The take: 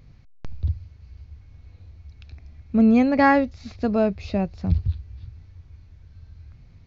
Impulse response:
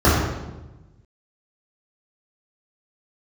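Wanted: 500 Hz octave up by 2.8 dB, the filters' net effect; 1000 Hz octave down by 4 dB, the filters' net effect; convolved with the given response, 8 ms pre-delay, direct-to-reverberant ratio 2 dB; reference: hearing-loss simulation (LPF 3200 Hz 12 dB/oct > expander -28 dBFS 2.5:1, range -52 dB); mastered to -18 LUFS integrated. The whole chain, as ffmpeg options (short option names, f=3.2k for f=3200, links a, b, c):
-filter_complex "[0:a]equalizer=f=500:t=o:g=5.5,equalizer=f=1k:t=o:g=-7.5,asplit=2[a][b];[1:a]atrim=start_sample=2205,adelay=8[c];[b][c]afir=irnorm=-1:irlink=0,volume=-26.5dB[d];[a][d]amix=inputs=2:normalize=0,lowpass=3.2k,agate=range=-52dB:threshold=-28dB:ratio=2.5,volume=-3.5dB"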